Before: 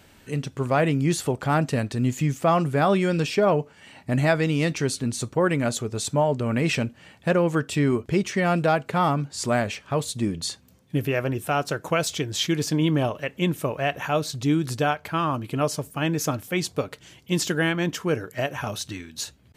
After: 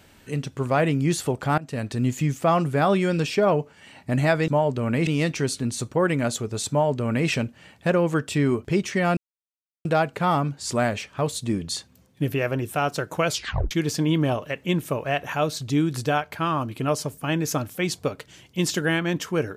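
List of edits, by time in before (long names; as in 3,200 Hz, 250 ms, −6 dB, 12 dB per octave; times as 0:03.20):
0:01.58–0:01.92: fade in, from −23 dB
0:06.11–0:06.70: duplicate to 0:04.48
0:08.58: splice in silence 0.68 s
0:12.01: tape stop 0.43 s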